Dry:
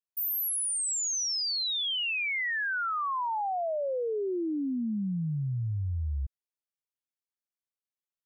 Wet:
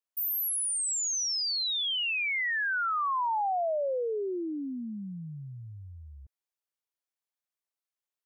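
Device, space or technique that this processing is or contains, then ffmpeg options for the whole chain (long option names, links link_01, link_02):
filter by subtraction: -filter_complex "[0:a]asplit=2[link_01][link_02];[link_02]lowpass=660,volume=-1[link_03];[link_01][link_03]amix=inputs=2:normalize=0"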